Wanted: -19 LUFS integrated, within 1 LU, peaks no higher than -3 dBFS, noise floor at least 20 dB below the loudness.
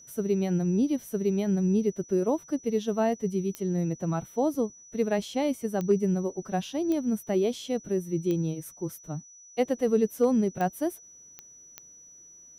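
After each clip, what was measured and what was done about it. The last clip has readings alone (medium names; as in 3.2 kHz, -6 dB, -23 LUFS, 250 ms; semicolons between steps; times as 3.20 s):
clicks found 7; steady tone 5.9 kHz; tone level -49 dBFS; loudness -28.0 LUFS; peak level -13.5 dBFS; loudness target -19.0 LUFS
-> de-click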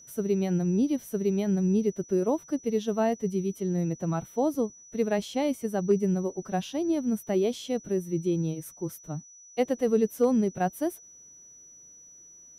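clicks found 0; steady tone 5.9 kHz; tone level -49 dBFS
-> band-stop 5.9 kHz, Q 30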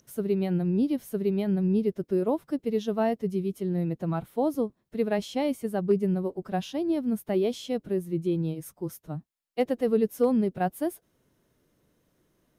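steady tone not found; loudness -28.0 LUFS; peak level -13.5 dBFS; loudness target -19.0 LUFS
-> trim +9 dB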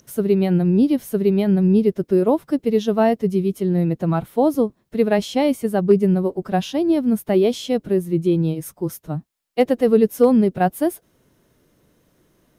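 loudness -19.0 LUFS; peak level -4.5 dBFS; noise floor -64 dBFS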